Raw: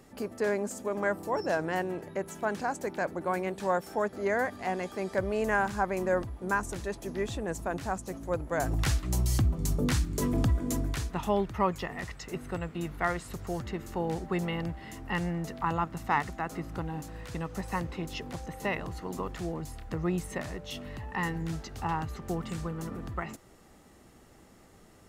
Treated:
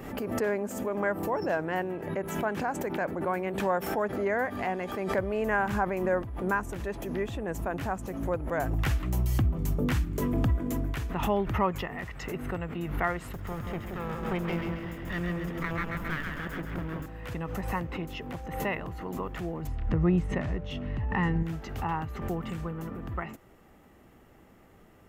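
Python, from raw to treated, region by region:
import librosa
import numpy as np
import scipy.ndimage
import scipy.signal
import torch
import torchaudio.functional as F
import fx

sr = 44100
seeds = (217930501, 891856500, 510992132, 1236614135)

y = fx.chain(x, sr, fx.lower_of_two(delay_ms=0.6),
    fx.echo_split(split_hz=980.0, low_ms=177, high_ms=135, feedback_pct=52, wet_db=-4), at=(13.32, 17.06))
y = fx.chain(y, sr, fx.lowpass(hz=6200.0, slope=12),
    fx.low_shelf(hz=250.0, db=10.5), at=(19.67, 21.43))
y = fx.band_shelf(y, sr, hz=6300.0, db=-10.0, octaves=1.7)
y = fx.pre_swell(y, sr, db_per_s=55.0)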